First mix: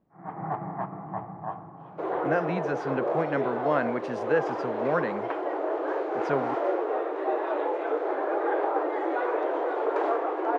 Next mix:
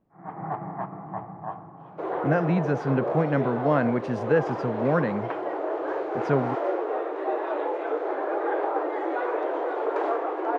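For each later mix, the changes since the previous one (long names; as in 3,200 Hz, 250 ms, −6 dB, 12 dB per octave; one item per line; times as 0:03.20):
speech: remove high-pass filter 480 Hz 6 dB per octave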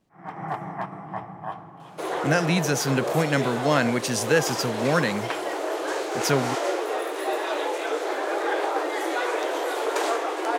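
master: remove low-pass filter 1,200 Hz 12 dB per octave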